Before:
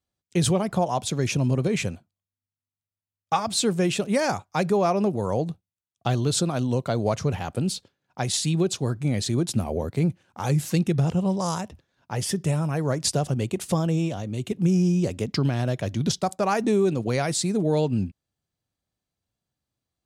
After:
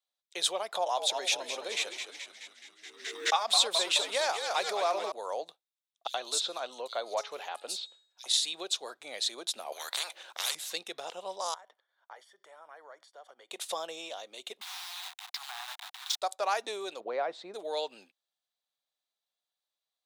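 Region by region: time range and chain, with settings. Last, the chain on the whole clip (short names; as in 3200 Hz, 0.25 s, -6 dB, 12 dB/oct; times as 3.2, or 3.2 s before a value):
0.75–5.12 frequency-shifting echo 0.213 s, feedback 62%, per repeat -74 Hz, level -7 dB + backwards sustainer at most 43 dB/s
6.07–8.26 de-hum 420.4 Hz, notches 22 + bands offset in time highs, lows 70 ms, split 4000 Hz
9.72–10.55 HPF 270 Hz + low shelf 370 Hz +8.5 dB + spectral compressor 10:1
11.54–13.51 tilt +3.5 dB/oct + compressor 5:1, threshold -37 dBFS + polynomial smoothing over 41 samples
14.61–16.22 level-crossing sampler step -28.5 dBFS + transient shaper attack -10 dB, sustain -2 dB + steep high-pass 740 Hz 96 dB/oct
17–17.54 LPF 1400 Hz + low shelf 450 Hz +9.5 dB
whole clip: HPF 560 Hz 24 dB/oct; bell 3700 Hz +11 dB 0.38 oct; gain -5 dB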